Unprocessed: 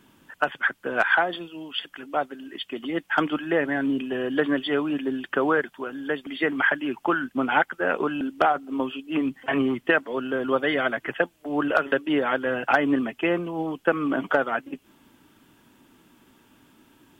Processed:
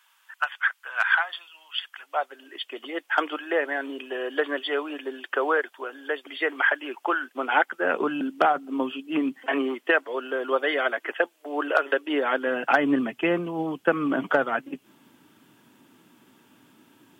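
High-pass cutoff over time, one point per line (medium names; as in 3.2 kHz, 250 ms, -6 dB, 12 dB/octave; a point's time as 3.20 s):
high-pass 24 dB/octave
1.84 s 980 Hz
2.43 s 390 Hz
7.35 s 390 Hz
8.15 s 170 Hz
9.07 s 170 Hz
9.82 s 350 Hz
12.04 s 350 Hz
13.15 s 110 Hz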